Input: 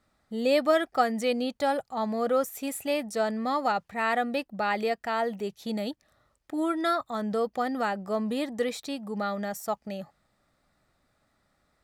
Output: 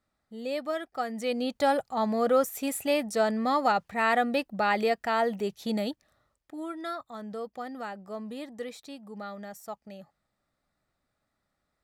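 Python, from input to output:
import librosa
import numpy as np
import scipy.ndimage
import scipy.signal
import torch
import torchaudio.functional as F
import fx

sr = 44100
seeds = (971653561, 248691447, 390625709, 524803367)

y = fx.gain(x, sr, db=fx.line((0.94, -9.0), (1.59, 2.0), (5.79, 2.0), (6.57, -9.0)))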